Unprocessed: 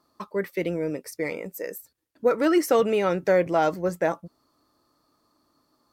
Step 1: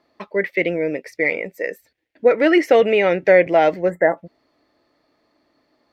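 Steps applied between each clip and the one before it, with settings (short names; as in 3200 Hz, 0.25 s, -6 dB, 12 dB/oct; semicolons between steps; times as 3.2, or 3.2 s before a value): EQ curve 140 Hz 0 dB, 680 Hz +9 dB, 1200 Hz -4 dB, 2000 Hz +15 dB, 9500 Hz -18 dB; spectral gain 3.9–4.17, 2100–7000 Hz -27 dB; high shelf 4400 Hz +6 dB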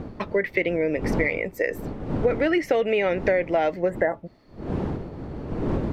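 wind noise 310 Hz -32 dBFS; compressor 5:1, threshold -24 dBFS, peak gain reduction 14.5 dB; gain +4 dB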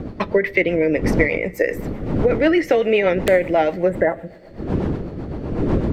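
wrapped overs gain 8.5 dB; two-slope reverb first 0.56 s, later 4.8 s, from -18 dB, DRR 15.5 dB; rotary speaker horn 8 Hz; gain +7.5 dB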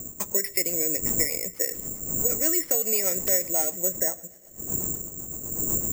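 careless resampling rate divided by 6×, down none, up zero stuff; gain -15.5 dB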